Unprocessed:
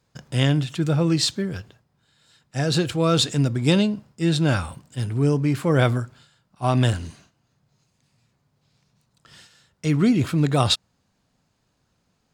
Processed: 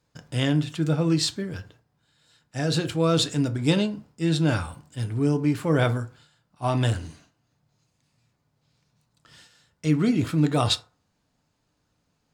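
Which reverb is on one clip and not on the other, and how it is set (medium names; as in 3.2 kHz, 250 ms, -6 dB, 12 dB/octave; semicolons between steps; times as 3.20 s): FDN reverb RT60 0.39 s, low-frequency decay 0.8×, high-frequency decay 0.5×, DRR 8 dB; trim -3.5 dB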